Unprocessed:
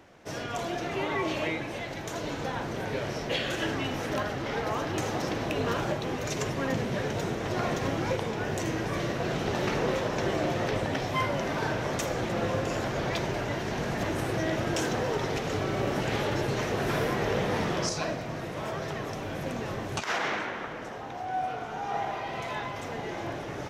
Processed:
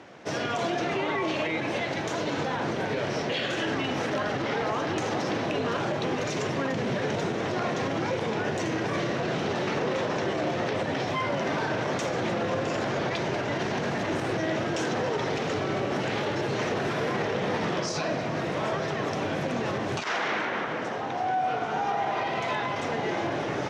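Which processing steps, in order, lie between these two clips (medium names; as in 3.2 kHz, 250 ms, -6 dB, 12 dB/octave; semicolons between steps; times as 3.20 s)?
peak limiter -27 dBFS, peak gain reduction 10 dB; band-pass 130–6100 Hz; trim +7.5 dB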